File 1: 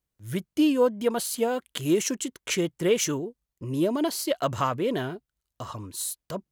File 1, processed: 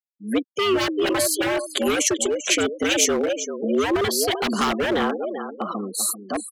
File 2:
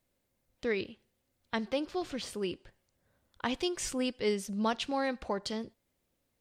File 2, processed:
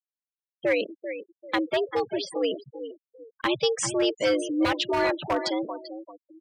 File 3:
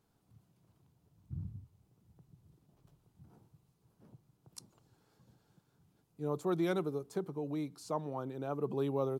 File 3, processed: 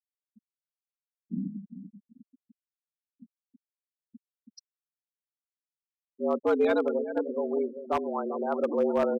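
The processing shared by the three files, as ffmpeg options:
-filter_complex "[0:a]aecho=1:1:391|782|1173|1564:0.299|0.102|0.0345|0.0117,afreqshift=100,afftfilt=real='re*gte(hypot(re,im),0.0141)':imag='im*gte(hypot(re,im),0.0141)':win_size=1024:overlap=0.75,acrossover=split=330|1500[a][b][c];[b]aeval=exprs='0.0376*(abs(mod(val(0)/0.0376+3,4)-2)-1)':c=same[d];[a][d][c]amix=inputs=3:normalize=0,volume=8.5dB"

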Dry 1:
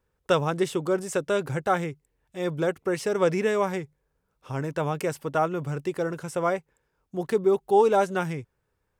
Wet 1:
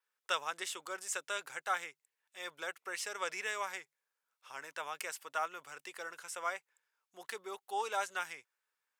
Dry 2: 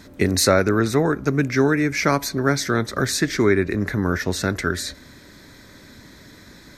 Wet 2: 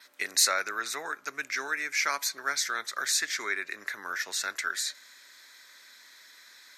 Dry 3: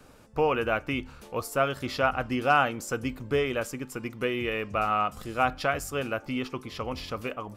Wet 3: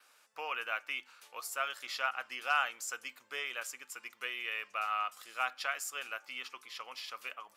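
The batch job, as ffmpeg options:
-af "adynamicequalizer=threshold=0.00316:dfrequency=7100:dqfactor=4.6:tfrequency=7100:tqfactor=4.6:attack=5:release=100:ratio=0.375:range=2:mode=boostabove:tftype=bell,highpass=1.4k,volume=-3dB"

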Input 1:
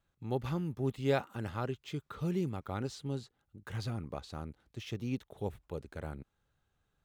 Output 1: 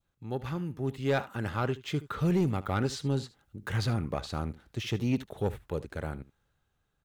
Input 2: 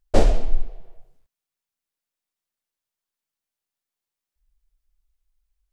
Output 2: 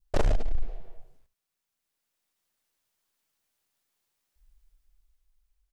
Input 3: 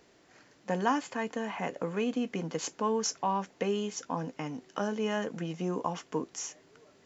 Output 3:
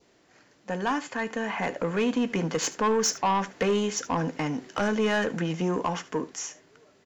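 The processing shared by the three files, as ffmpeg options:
-filter_complex "[0:a]adynamicequalizer=threshold=0.00282:dfrequency=1700:dqfactor=1.7:tfrequency=1700:tqfactor=1.7:attack=5:release=100:ratio=0.375:range=2.5:mode=boostabove:tftype=bell,dynaudnorm=f=330:g=9:m=9dB,asoftclip=type=tanh:threshold=-18.5dB,asplit=2[a][b];[b]aecho=0:1:74:0.133[c];[a][c]amix=inputs=2:normalize=0"

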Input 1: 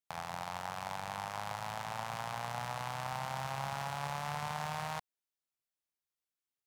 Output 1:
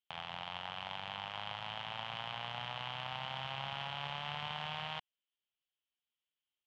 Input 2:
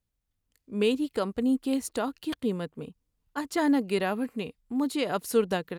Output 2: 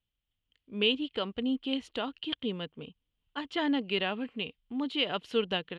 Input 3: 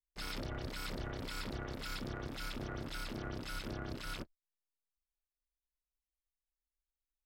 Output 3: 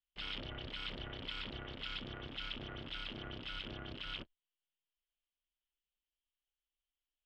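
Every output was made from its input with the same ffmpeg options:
-af "lowpass=f=3.1k:t=q:w=6.8,volume=-5.5dB"

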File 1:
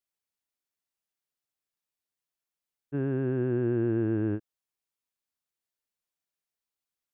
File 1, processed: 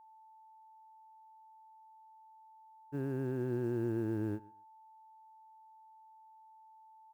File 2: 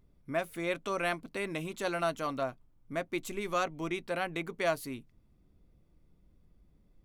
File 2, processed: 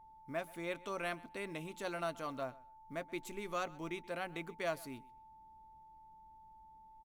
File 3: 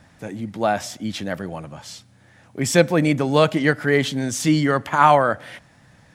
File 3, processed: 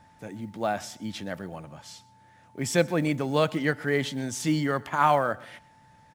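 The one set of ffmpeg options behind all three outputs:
-af "acrusher=bits=9:mode=log:mix=0:aa=0.000001,aecho=1:1:128|256:0.0794|0.0143,aeval=exprs='val(0)+0.00355*sin(2*PI*880*n/s)':c=same,volume=-7.5dB"

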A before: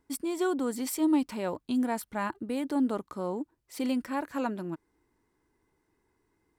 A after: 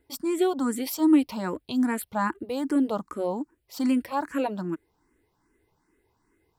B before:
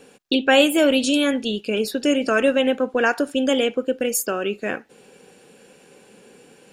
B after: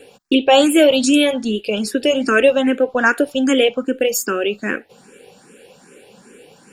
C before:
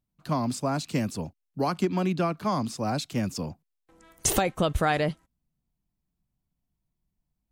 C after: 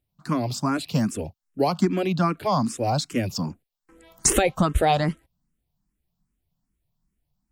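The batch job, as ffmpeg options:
-filter_complex "[0:a]bandreject=f=6.2k:w=25,asplit=2[a][b];[b]afreqshift=2.5[c];[a][c]amix=inputs=2:normalize=1,volume=7dB"

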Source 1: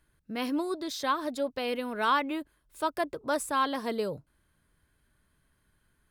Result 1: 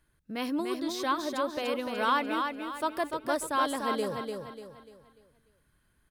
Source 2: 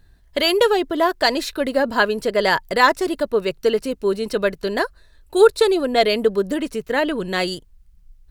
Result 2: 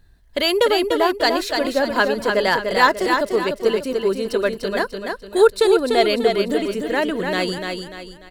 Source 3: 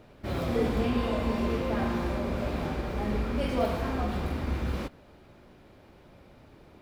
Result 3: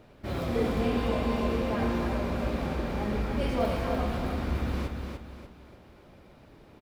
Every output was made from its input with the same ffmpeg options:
-af "aecho=1:1:295|590|885|1180|1475:0.562|0.214|0.0812|0.0309|0.0117,volume=-1dB"

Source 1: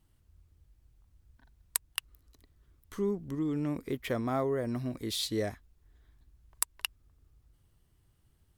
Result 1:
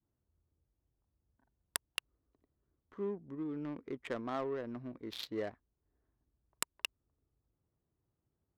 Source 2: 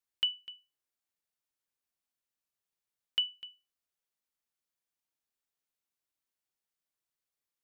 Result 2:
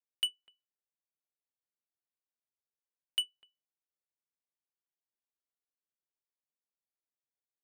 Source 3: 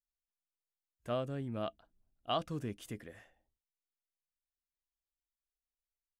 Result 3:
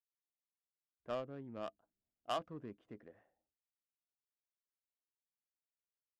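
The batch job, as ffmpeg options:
-af "adynamicequalizer=threshold=0.00398:dfrequency=670:dqfactor=1.4:tfrequency=670:tqfactor=1.4:attack=5:release=100:ratio=0.375:range=2.5:mode=cutabove:tftype=bell,highpass=f=460:p=1,adynamicsmooth=sensitivity=4.5:basefreq=770,volume=-1.5dB"

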